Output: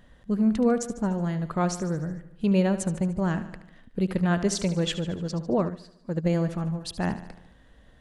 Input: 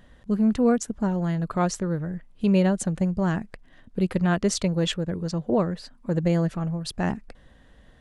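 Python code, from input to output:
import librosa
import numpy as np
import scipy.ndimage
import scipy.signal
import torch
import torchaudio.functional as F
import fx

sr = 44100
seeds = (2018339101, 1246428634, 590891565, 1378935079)

y = fx.echo_feedback(x, sr, ms=74, feedback_pct=58, wet_db=-13)
y = fx.upward_expand(y, sr, threshold_db=-33.0, expansion=1.5, at=(5.68, 6.24), fade=0.02)
y = y * librosa.db_to_amplitude(-2.0)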